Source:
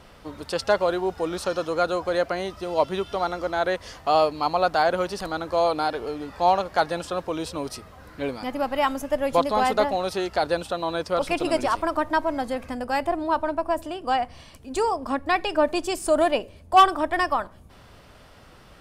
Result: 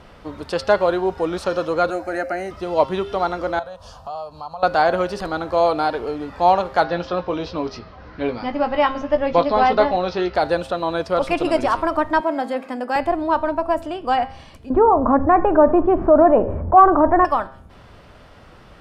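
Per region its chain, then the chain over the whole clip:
1.90–2.51 s: high-pass 56 Hz + treble shelf 5 kHz +7.5 dB + static phaser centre 700 Hz, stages 8
3.59–4.63 s: compression 3:1, threshold -35 dBFS + static phaser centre 840 Hz, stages 4
6.84–10.35 s: steep low-pass 5.8 kHz 48 dB/octave + doubling 17 ms -8.5 dB
12.20–12.96 s: high-pass 220 Hz 24 dB/octave + band-stop 6 kHz, Q 9.1
14.70–17.25 s: low-pass 1.3 kHz 24 dB/octave + level flattener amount 50%
whole clip: low-pass 3 kHz 6 dB/octave; de-hum 133.1 Hz, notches 40; trim +5 dB

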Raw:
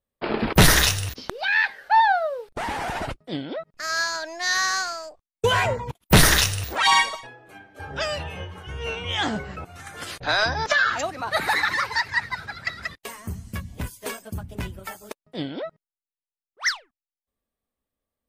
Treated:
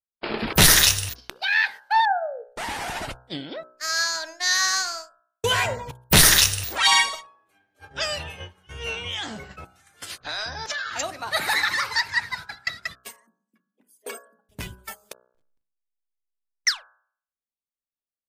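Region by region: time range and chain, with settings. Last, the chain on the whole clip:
2.05–2.50 s: spectral contrast enhancement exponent 2.4 + resonant low-pass 2.5 kHz, resonance Q 6.3
9.07–10.96 s: compression 4:1, threshold -28 dBFS + tape noise reduction on one side only encoder only
13.16–14.49 s: resonances exaggerated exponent 2 + steep high-pass 220 Hz 48 dB/octave + hum notches 50/100/150/200/250/300/350/400/450 Hz
15.26–16.67 s: Chebyshev band-stop 970–2600 Hz, order 4 + compression 4:1, threshold -42 dBFS + hysteresis with a dead band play -30 dBFS
whole clip: gate -34 dBFS, range -18 dB; treble shelf 2.3 kHz +10 dB; de-hum 62.12 Hz, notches 27; trim -4 dB

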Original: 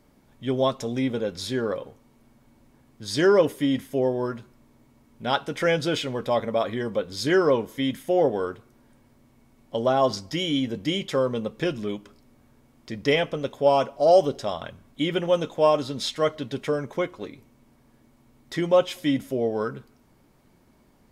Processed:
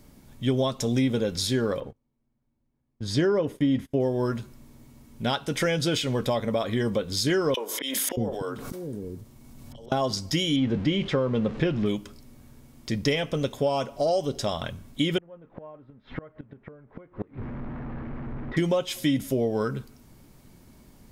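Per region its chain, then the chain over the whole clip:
1.80–4.00 s: low-pass 1.5 kHz 6 dB/octave + gate -46 dBFS, range -25 dB
7.54–9.92 s: slow attack 608 ms + three bands offset in time highs, mids, lows 30/630 ms, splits 370/2100 Hz + swell ahead of each attack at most 20 dB/s
10.56–11.86 s: jump at every zero crossing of -38 dBFS + low-pass 2.5 kHz
15.18–18.57 s: jump at every zero crossing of -36 dBFS + low-pass 1.8 kHz 24 dB/octave + inverted gate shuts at -24 dBFS, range -28 dB
whole clip: treble shelf 2.9 kHz +11 dB; compression 4:1, threshold -25 dBFS; bass shelf 260 Hz +10.5 dB

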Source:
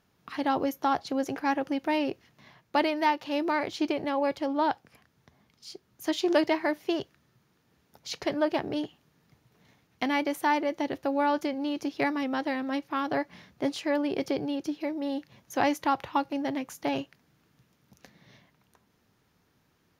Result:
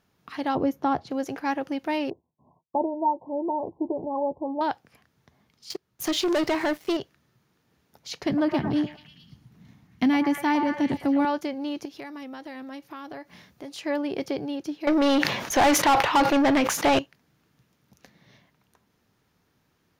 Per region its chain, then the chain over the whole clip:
0.55–1.11 s: high-pass 77 Hz + tilt EQ -3 dB/octave
2.10–4.61 s: expander -52 dBFS + brick-wall FIR low-pass 1.1 kHz + doubling 12 ms -9 dB
5.70–6.97 s: peaking EQ 240 Hz -6.5 dB 0.27 oct + waveshaping leveller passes 3 + compression 2.5:1, threshold -24 dBFS
8.26–11.25 s: resonant low shelf 320 Hz +11 dB, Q 1.5 + repeats whose band climbs or falls 109 ms, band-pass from 910 Hz, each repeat 0.7 oct, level -2.5 dB
11.85–13.78 s: treble shelf 7.3 kHz +8.5 dB + compression 4:1, threshold -37 dBFS
14.87–16.99 s: overdrive pedal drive 30 dB, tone 3.3 kHz, clips at -11.5 dBFS + decay stretcher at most 56 dB/s
whole clip: none

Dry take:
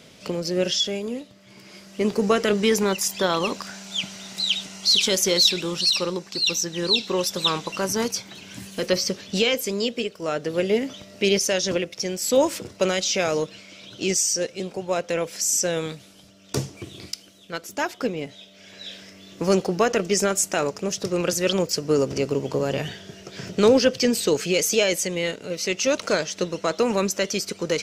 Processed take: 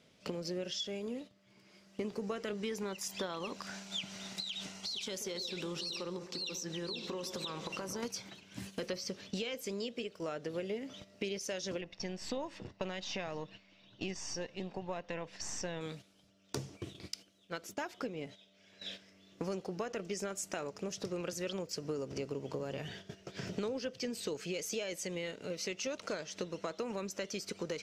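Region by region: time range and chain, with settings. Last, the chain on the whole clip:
4.40–8.03 s: compression, threshold -29 dBFS + bucket-brigade echo 136 ms, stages 1024, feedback 75%, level -11.5 dB
11.81–15.81 s: partial rectifier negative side -3 dB + low-pass 4.2 kHz + comb 1.1 ms, depth 37%
whole clip: gate -39 dBFS, range -11 dB; treble shelf 7.1 kHz -7 dB; compression 6:1, threshold -31 dBFS; trim -5 dB

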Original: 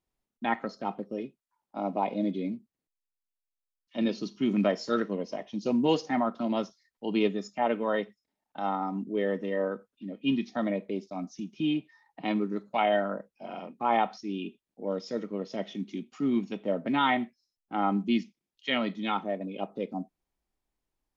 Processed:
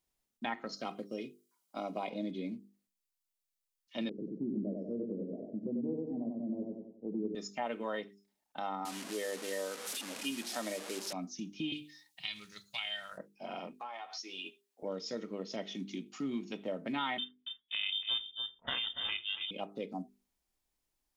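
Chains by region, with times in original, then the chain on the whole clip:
0.72–2.10 s: treble shelf 2.7 kHz +9.5 dB + comb of notches 890 Hz
4.09–7.35 s: inverse Chebyshev low-pass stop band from 1.2 kHz, stop band 50 dB + feedback delay 93 ms, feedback 42%, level -3 dB
8.85–11.13 s: one-bit delta coder 64 kbps, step -34.5 dBFS + high-pass 300 Hz
11.72–13.18 s: FFT filter 130 Hz 0 dB, 260 Hz -30 dB, 960 Hz -14 dB, 3.5 kHz +11 dB + compression 1.5:1, threshold -39 dBFS
13.73–14.83 s: high-pass 660 Hz + compression 16:1, threshold -39 dBFS + doubling 12 ms -3 dB
17.18–19.51 s: ring modulator 230 Hz + delay 284 ms -11.5 dB + frequency inversion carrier 3.6 kHz
whole clip: treble shelf 2.7 kHz +9.5 dB; hum notches 50/100/150/200/250/300/350/400/450 Hz; compression 2.5:1, threshold -34 dBFS; trim -2.5 dB

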